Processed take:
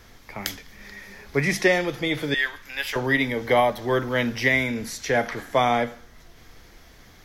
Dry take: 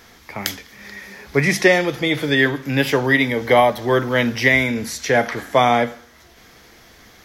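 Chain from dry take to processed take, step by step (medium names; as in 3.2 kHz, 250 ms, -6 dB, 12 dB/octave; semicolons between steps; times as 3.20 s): 2.34–2.96 s: high-pass 1.1 kHz 12 dB/octave; added noise brown -44 dBFS; trim -5.5 dB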